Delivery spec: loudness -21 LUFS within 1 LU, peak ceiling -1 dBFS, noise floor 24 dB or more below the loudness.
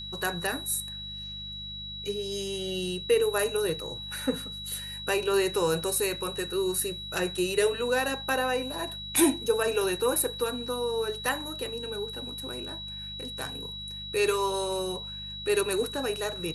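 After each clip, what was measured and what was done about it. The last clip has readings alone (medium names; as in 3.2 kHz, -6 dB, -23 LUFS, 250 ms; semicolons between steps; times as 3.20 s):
hum 50 Hz; highest harmonic 200 Hz; hum level -44 dBFS; steady tone 3.9 kHz; tone level -37 dBFS; loudness -29.0 LUFS; peak level -10.5 dBFS; loudness target -21.0 LUFS
-> de-hum 50 Hz, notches 4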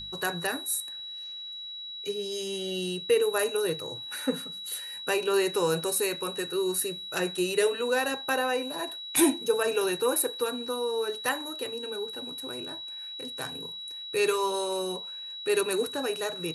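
hum not found; steady tone 3.9 kHz; tone level -37 dBFS
-> band-stop 3.9 kHz, Q 30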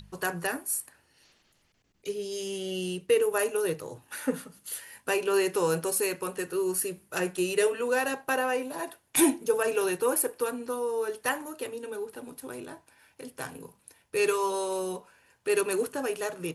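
steady tone not found; loudness -29.0 LUFS; peak level -10.5 dBFS; loudness target -21.0 LUFS
-> trim +8 dB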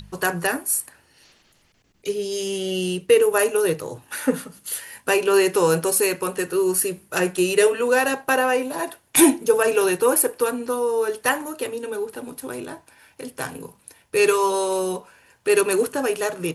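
loudness -21.0 LUFS; peak level -2.5 dBFS; noise floor -61 dBFS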